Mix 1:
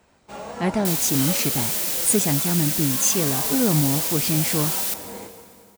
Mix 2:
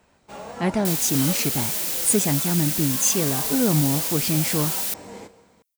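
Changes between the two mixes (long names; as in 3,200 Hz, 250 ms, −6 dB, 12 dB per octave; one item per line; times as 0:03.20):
first sound: send −8.5 dB
second sound: send off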